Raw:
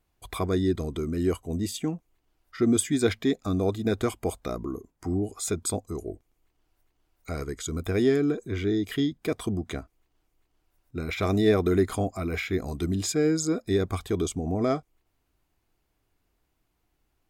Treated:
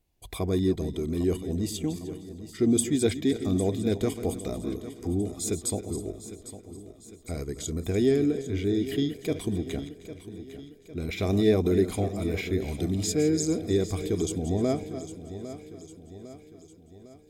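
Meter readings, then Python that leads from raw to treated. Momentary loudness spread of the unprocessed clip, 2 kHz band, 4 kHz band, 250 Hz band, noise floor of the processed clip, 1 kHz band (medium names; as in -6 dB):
13 LU, -4.5 dB, -0.5 dB, 0.0 dB, -52 dBFS, -5.0 dB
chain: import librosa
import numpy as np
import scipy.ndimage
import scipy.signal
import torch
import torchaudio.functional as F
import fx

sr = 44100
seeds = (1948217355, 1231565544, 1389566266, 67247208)

y = fx.reverse_delay_fb(x, sr, ms=153, feedback_pct=48, wet_db=-12)
y = fx.peak_eq(y, sr, hz=1300.0, db=-12.0, octaves=1.0)
y = fx.echo_feedback(y, sr, ms=804, feedback_pct=52, wet_db=-13.5)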